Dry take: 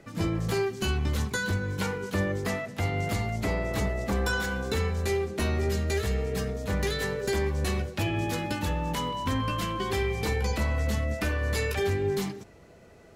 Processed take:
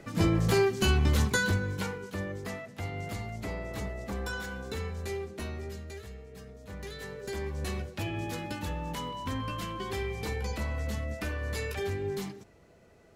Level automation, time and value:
0:01.36 +3 dB
0:02.11 −8 dB
0:05.27 −8 dB
0:06.26 −18.5 dB
0:07.65 −6 dB

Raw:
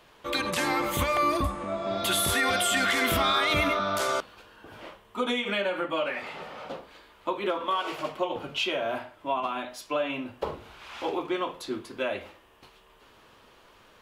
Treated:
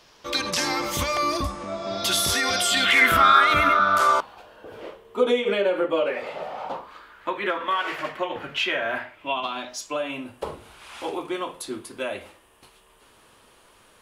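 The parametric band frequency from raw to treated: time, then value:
parametric band +14.5 dB 0.68 octaves
0:02.66 5,400 Hz
0:03.14 1,400 Hz
0:03.92 1,400 Hz
0:04.79 440 Hz
0:06.11 440 Hz
0:07.31 1,800 Hz
0:09.02 1,800 Hz
0:10.04 9,500 Hz

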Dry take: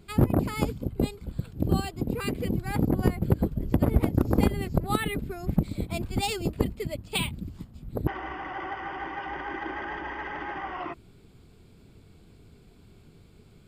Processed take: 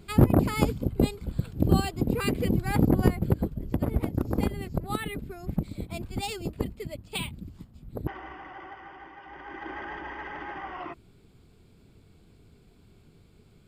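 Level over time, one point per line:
0:02.97 +3 dB
0:03.59 −4.5 dB
0:08.02 −4.5 dB
0:09.20 −12.5 dB
0:09.73 −3 dB

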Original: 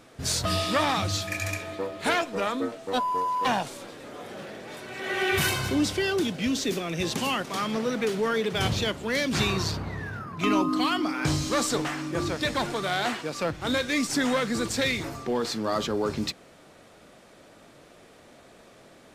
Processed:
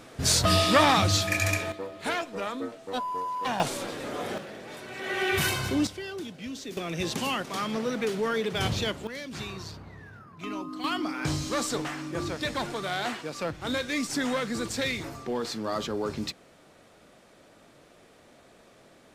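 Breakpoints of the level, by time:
+4.5 dB
from 0:01.72 −5 dB
from 0:03.60 +7 dB
from 0:04.38 −1.5 dB
from 0:05.87 −11 dB
from 0:06.77 −2 dB
from 0:09.07 −12 dB
from 0:10.84 −3.5 dB

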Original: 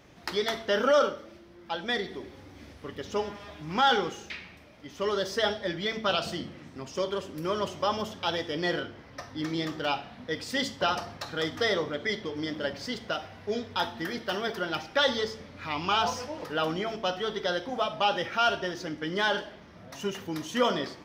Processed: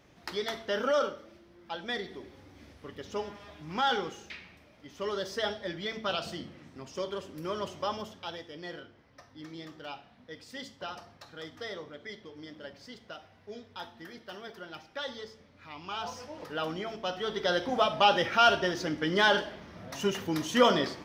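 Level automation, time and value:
0:07.87 −5 dB
0:08.51 −13 dB
0:15.83 −13 dB
0:16.43 −5 dB
0:17.03 −5 dB
0:17.65 +3 dB

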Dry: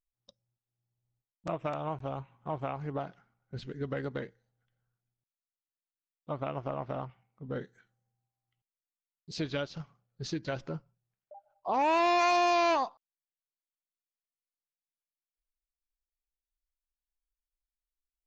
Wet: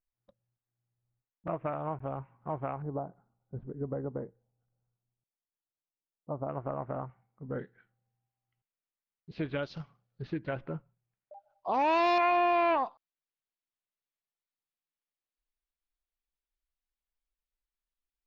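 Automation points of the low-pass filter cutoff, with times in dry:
low-pass filter 24 dB per octave
2,100 Hz
from 0:02.82 1,000 Hz
from 0:06.49 1,800 Hz
from 0:07.59 2,700 Hz
from 0:09.63 5,200 Hz
from 0:10.22 2,600 Hz
from 0:11.34 5,200 Hz
from 0:12.18 2,700 Hz
from 0:12.86 4,100 Hz

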